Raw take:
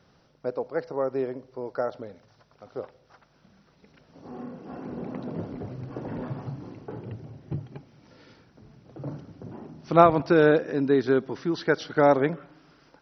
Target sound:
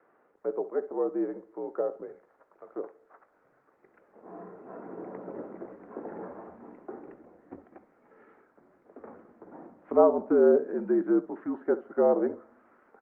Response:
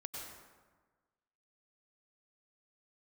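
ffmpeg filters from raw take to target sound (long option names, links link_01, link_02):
-filter_complex "[0:a]acrossover=split=890[link_01][link_02];[link_02]acompressor=threshold=-48dB:ratio=16[link_03];[link_01][link_03]amix=inputs=2:normalize=0,asettb=1/sr,asplit=3[link_04][link_05][link_06];[link_04]atrim=end=7.734[link_07];[link_05]atrim=start=7.73:end=9.51,asetpts=PTS-STARTPTS,afade=type=in:duration=0.004:curve=qsin,afade=type=out:start_time=1.776:duration=0.004:curve=qsin,asoftclip=type=hard:threshold=-36dB[link_08];[link_06]atrim=start=9.506[link_09];[link_07][link_08]acrossfade=duration=0.004:curve1=hsin:curve2=qsin[link_10];[link_10][link_09]acrossfade=duration=0.004:curve1=qsin:curve2=hsin,aecho=1:1:20|67:0.211|0.15,highpass=frequency=370:width_type=q:width=0.5412,highpass=frequency=370:width_type=q:width=1.307,lowpass=frequency=2000:width_type=q:width=0.5176,lowpass=frequency=2000:width_type=q:width=0.7071,lowpass=frequency=2000:width_type=q:width=1.932,afreqshift=-63" -ar 48000 -c:a libopus -b:a 48k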